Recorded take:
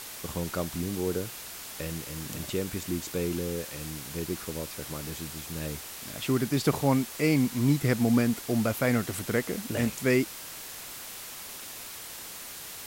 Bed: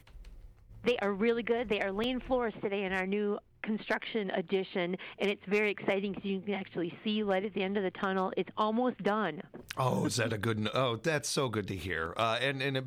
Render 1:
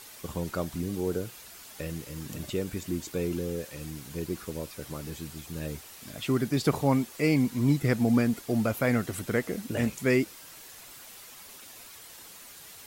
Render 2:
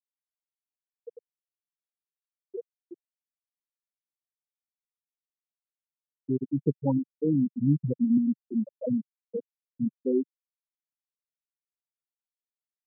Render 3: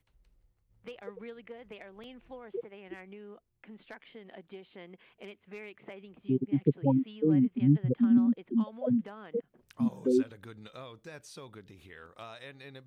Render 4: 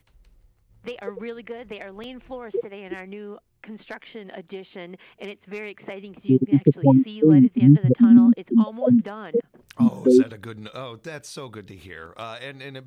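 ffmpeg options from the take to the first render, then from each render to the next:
-af "afftdn=nr=8:nf=-42"
-af "afftfilt=real='re*gte(hypot(re,im),0.398)':imag='im*gte(hypot(re,im),0.398)':win_size=1024:overlap=0.75,lowshelf=f=110:t=q:w=1.5:g=-9"
-filter_complex "[1:a]volume=0.158[s0];[0:a][s0]amix=inputs=2:normalize=0"
-af "volume=3.55,alimiter=limit=0.708:level=0:latency=1"

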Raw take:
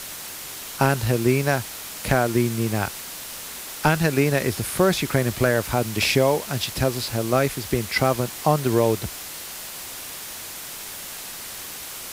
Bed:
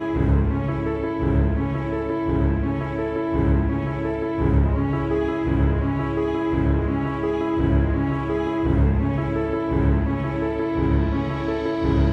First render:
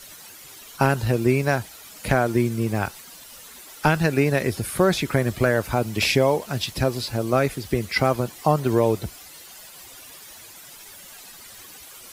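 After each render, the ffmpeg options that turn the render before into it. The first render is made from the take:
-af "afftdn=nr=12:nf=-36"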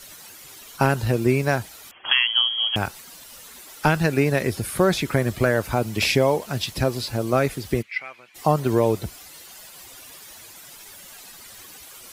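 -filter_complex "[0:a]asettb=1/sr,asplit=3[s0][s1][s2];[s0]atrim=end=1.914[s3];[s1]atrim=start=1.91:end=2.76,asetpts=PTS-STARTPTS,afade=t=in:d=0.004:c=qsin,afade=t=out:st=0.846:d=0.004:c=qsin,lowpass=f=2900:t=q:w=0.5098,lowpass=f=2900:t=q:w=0.6013,lowpass=f=2900:t=q:w=0.9,lowpass=f=2900:t=q:w=2.563,afreqshift=-3400[s4];[s2]atrim=start=2.756[s5];[s3][s4]acrossfade=d=0.004:c1=hsin:c2=qsin[s6];[s6][s5]acrossfade=d=0.004:c1=qsin:c2=hsin,asplit=3[s7][s8][s9];[s7]afade=t=out:st=7.81:d=0.02[s10];[s8]bandpass=f=2300:t=q:w=4.2,afade=t=in:st=7.81:d=0.02,afade=t=out:st=8.34:d=0.02[s11];[s9]afade=t=in:st=8.34:d=0.02[s12];[s10][s11][s12]amix=inputs=3:normalize=0"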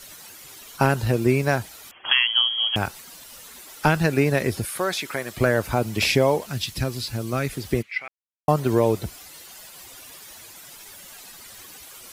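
-filter_complex "[0:a]asettb=1/sr,asplit=3[s0][s1][s2];[s0]atrim=end=4.654[s3];[s1]atrim=start=4.65:end=5.37,asetpts=PTS-STARTPTS,afade=t=in:d=0.004:c=qsin,afade=t=out:st=0.716:d=0.004:c=qsin,highpass=f=940:p=1[s4];[s2]atrim=start=5.366[s5];[s3][s4]acrossfade=d=0.004:c1=hsin:c2=qsin[s6];[s6][s5]acrossfade=d=0.004:c1=qsin:c2=hsin,asettb=1/sr,asplit=3[s7][s8][s9];[s7]atrim=end=6.474[s10];[s8]atrim=start=6.47:end=7.53,asetpts=PTS-STARTPTS,afade=t=in:d=0.004:c=qsin,afade=t=out:st=1.056:d=0.004:c=qsin,equalizer=f=620:t=o:w=2.1:g=-9[s11];[s9]atrim=start=7.526[s12];[s10][s11]acrossfade=d=0.004:c1=hsin:c2=qsin[s13];[s13][s12]acrossfade=d=0.004:c1=qsin:c2=hsin,asplit=3[s14][s15][s16];[s14]atrim=end=8.08,asetpts=PTS-STARTPTS,afade=t=out:st=8.076:d=0.004:c=hsin[s17];[s15]atrim=start=8.08:end=8.48,asetpts=PTS-STARTPTS,volume=0[s18];[s16]atrim=start=8.48,asetpts=PTS-STARTPTS,afade=t=in:d=0.004:c=hsin[s19];[s17][s18][s19]concat=n=3:v=0:a=1"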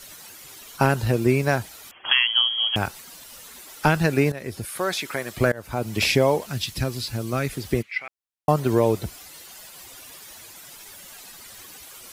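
-filter_complex "[0:a]asplit=3[s0][s1][s2];[s0]atrim=end=4.32,asetpts=PTS-STARTPTS,afade=t=out:st=4.316:d=0.004:c=hsin:silence=0.133352[s3];[s1]atrim=start=4.32:end=5.52,asetpts=PTS-STARTPTS,afade=t=in:d=0.57:silence=0.133352,afade=t=out:st=1.196:d=0.004:c=hsin:silence=0.0630957[s4];[s2]atrim=start=5.52,asetpts=PTS-STARTPTS,afade=t=in:d=0.45:silence=0.0630957[s5];[s3][s4][s5]concat=n=3:v=0:a=1"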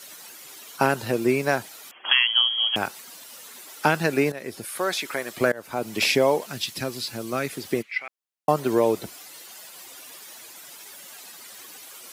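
-af "highpass=230"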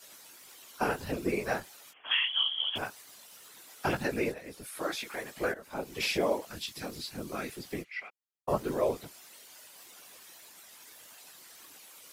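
-af "flanger=delay=15.5:depth=4.2:speed=1.7,afftfilt=real='hypot(re,im)*cos(2*PI*random(0))':imag='hypot(re,im)*sin(2*PI*random(1))':win_size=512:overlap=0.75"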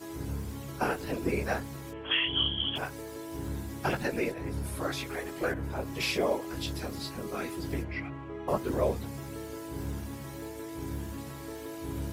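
-filter_complex "[1:a]volume=0.141[s0];[0:a][s0]amix=inputs=2:normalize=0"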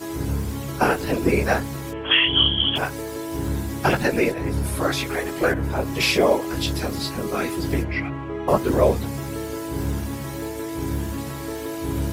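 -af "volume=3.35"

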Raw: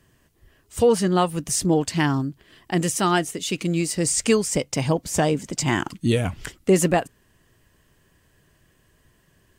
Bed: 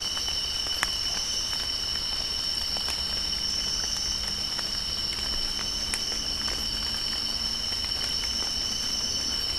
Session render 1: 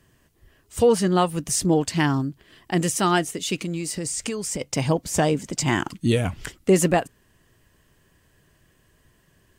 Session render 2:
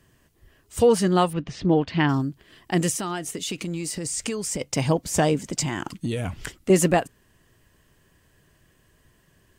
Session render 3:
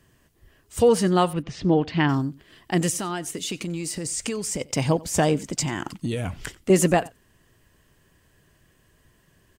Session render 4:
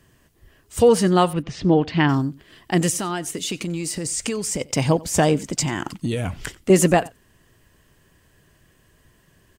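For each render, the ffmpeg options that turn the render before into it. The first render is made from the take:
-filter_complex "[0:a]asettb=1/sr,asplit=3[s0][s1][s2];[s0]atrim=end=3.614[s3];[s1]atrim=start=3.61:end=4.61,asetpts=PTS-STARTPTS,afade=t=in:d=0.004:c=qsin,afade=t=out:st=0.996:d=0.004:c=qsin,acompressor=threshold=0.0631:ratio=10:attack=3.2:release=140:knee=1:detection=peak[s4];[s2]atrim=start=4.606[s5];[s3][s4]acrossfade=d=0.004:c1=hsin:c2=qsin[s6];[s6][s5]acrossfade=d=0.004:c1=qsin:c2=hsin"
-filter_complex "[0:a]asettb=1/sr,asplit=3[s0][s1][s2];[s0]atrim=end=1.334[s3];[s1]atrim=start=1.33:end=2.09,asetpts=PTS-STARTPTS,afade=t=in:d=0.004:c=qsin,afade=t=out:st=0.756:d=0.004:c=qsin,lowpass=f=3700:w=0.5412,lowpass=f=3700:w=1.3066[s4];[s2]atrim=start=2.086[s5];[s3][s4]acrossfade=d=0.004:c1=hsin:c2=qsin[s6];[s6][s5]acrossfade=d=0.004:c1=qsin:c2=hsin,asettb=1/sr,asplit=3[s7][s8][s9];[s7]atrim=end=2.934[s10];[s8]atrim=start=2.93:end=4.12,asetpts=PTS-STARTPTS,afade=t=in:d=0.004:c=qsin,afade=t=out:st=1.186:d=0.004:c=qsin,acompressor=threshold=0.0562:ratio=6:attack=3.2:release=140:knee=1:detection=peak[s11];[s9]atrim=start=4.116[s12];[s10][s11]acrossfade=d=0.004:c1=hsin:c2=qsin[s13];[s13][s12]acrossfade=d=0.004:c1=qsin:c2=hsin,asettb=1/sr,asplit=3[s14][s15][s16];[s14]atrim=end=5.654[s17];[s15]atrim=start=5.65:end=6.7,asetpts=PTS-STARTPTS,afade=t=in:d=0.004:c=qsin,afade=t=out:st=1.046:d=0.004:c=qsin,acompressor=threshold=0.0708:ratio=5:attack=3.2:release=140:knee=1:detection=peak[s18];[s16]atrim=start=6.696[s19];[s17][s18]acrossfade=d=0.004:c1=hsin:c2=qsin[s20];[s20][s19]acrossfade=d=0.004:c1=qsin:c2=hsin"
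-af "aecho=1:1:91:0.075"
-af "volume=1.41"

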